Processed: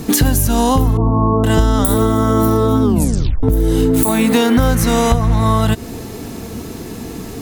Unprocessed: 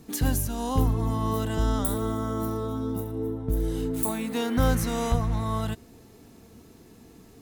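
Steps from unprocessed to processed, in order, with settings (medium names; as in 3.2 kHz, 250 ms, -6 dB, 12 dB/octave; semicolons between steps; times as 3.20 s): compression 12:1, threshold -32 dBFS, peak gain reduction 15.5 dB; 0.97–1.44 s: elliptic low-pass 1.1 kHz, stop band 80 dB; 2.83 s: tape stop 0.60 s; loudness maximiser +24 dB; trim -1 dB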